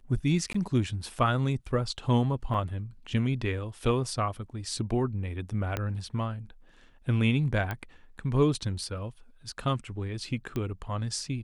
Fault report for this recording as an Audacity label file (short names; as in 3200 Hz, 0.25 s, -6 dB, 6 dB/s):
0.530000	0.540000	gap 14 ms
2.540000	2.540000	gap 3.2 ms
5.770000	5.770000	pop -15 dBFS
7.710000	7.710000	pop -19 dBFS
10.560000	10.560000	pop -20 dBFS